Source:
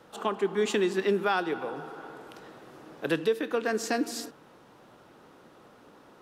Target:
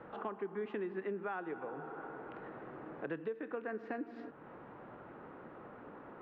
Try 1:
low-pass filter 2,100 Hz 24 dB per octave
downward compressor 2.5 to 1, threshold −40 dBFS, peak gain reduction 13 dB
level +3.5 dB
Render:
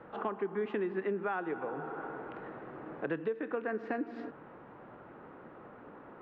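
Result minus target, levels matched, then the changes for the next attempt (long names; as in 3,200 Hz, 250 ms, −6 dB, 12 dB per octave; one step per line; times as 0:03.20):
downward compressor: peak gain reduction −5.5 dB
change: downward compressor 2.5 to 1, threshold −49 dBFS, peak gain reduction 18 dB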